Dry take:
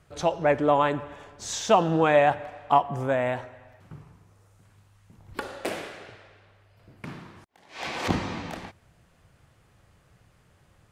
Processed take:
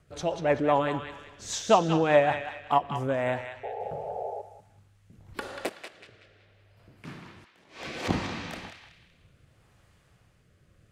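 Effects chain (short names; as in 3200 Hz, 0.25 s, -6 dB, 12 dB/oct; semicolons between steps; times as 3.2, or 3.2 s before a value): 5.69–7.05 compressor 10:1, threshold -48 dBFS, peak gain reduction 18.5 dB; rotary speaker horn 5 Hz, later 0.7 Hz, at 2.72; 3.63–4.42 painted sound noise 390–880 Hz -35 dBFS; on a send: narrowing echo 0.188 s, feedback 42%, band-pass 3000 Hz, level -5 dB; on the sum: ending taper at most 440 dB/s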